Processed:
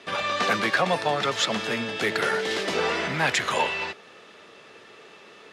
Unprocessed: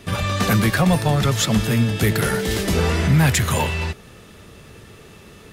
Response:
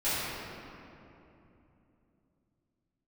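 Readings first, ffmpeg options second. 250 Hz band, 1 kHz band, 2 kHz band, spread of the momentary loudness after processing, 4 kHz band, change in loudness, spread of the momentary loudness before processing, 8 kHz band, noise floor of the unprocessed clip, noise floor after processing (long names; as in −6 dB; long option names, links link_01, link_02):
−12.5 dB, −0.5 dB, 0.0 dB, 5 LU, −1.5 dB, −5.5 dB, 7 LU, −9.0 dB, −45 dBFS, −50 dBFS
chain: -af "highpass=450,lowpass=4600"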